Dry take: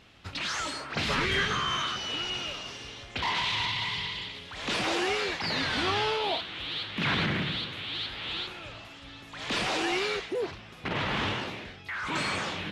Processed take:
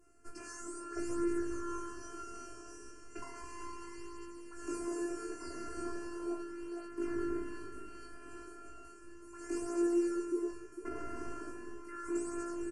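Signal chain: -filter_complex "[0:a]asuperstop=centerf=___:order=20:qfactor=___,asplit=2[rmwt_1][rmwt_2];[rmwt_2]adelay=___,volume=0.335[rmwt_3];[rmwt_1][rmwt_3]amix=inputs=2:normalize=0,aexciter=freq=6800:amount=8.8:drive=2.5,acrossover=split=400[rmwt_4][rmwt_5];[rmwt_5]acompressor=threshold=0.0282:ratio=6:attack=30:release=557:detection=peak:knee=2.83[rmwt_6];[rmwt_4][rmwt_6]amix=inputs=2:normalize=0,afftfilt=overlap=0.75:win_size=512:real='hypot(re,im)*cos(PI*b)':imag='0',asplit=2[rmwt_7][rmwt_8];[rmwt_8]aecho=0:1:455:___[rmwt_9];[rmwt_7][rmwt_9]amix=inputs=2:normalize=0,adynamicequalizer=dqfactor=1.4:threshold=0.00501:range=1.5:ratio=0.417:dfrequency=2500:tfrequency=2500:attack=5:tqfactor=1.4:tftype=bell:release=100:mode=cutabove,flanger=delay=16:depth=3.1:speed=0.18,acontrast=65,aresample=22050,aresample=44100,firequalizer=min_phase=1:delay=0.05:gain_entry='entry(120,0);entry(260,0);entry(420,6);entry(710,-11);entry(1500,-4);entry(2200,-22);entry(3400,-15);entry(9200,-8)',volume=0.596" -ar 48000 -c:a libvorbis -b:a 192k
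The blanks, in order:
3600, 2.6, 22, 0.355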